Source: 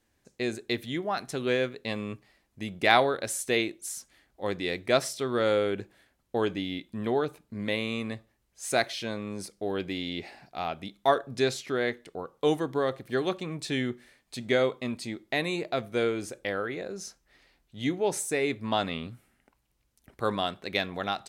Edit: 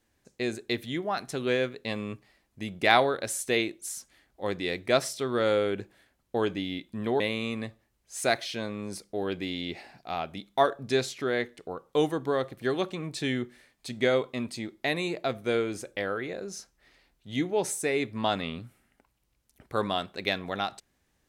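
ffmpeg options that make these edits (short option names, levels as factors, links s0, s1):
-filter_complex "[0:a]asplit=2[s0][s1];[s0]atrim=end=7.202[s2];[s1]atrim=start=7.678[s3];[s2][s3]acrossfade=d=0.004:c1=hsin:c2=hsin"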